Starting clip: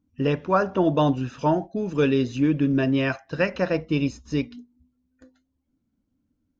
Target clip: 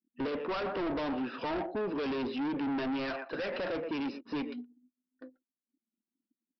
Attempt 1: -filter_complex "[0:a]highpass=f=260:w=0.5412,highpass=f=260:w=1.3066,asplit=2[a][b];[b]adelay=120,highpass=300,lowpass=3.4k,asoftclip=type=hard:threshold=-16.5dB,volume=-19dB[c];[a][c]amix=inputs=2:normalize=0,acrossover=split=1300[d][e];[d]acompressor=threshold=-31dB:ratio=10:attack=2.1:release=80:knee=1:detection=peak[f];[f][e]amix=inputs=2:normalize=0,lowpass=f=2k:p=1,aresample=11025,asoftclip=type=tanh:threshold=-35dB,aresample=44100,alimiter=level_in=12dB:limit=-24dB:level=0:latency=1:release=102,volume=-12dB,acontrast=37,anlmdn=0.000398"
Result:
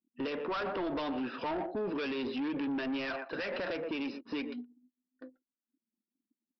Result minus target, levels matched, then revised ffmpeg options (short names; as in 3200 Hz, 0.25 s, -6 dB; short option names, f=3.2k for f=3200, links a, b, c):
compressor: peak gain reduction +8 dB
-filter_complex "[0:a]highpass=f=260:w=0.5412,highpass=f=260:w=1.3066,asplit=2[a][b];[b]adelay=120,highpass=300,lowpass=3.4k,asoftclip=type=hard:threshold=-16.5dB,volume=-19dB[c];[a][c]amix=inputs=2:normalize=0,acrossover=split=1300[d][e];[d]acompressor=threshold=-22dB:ratio=10:attack=2.1:release=80:knee=1:detection=peak[f];[f][e]amix=inputs=2:normalize=0,lowpass=f=2k:p=1,aresample=11025,asoftclip=type=tanh:threshold=-35dB,aresample=44100,alimiter=level_in=12dB:limit=-24dB:level=0:latency=1:release=102,volume=-12dB,acontrast=37,anlmdn=0.000398"